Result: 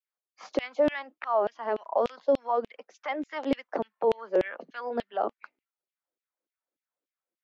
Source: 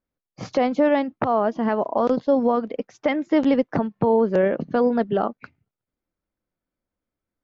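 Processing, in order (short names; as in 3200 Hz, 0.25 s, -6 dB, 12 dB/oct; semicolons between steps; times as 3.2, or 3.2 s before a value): steep high-pass 170 Hz 72 dB/oct; LFO high-pass saw down 3.4 Hz 300–3100 Hz; gain -8.5 dB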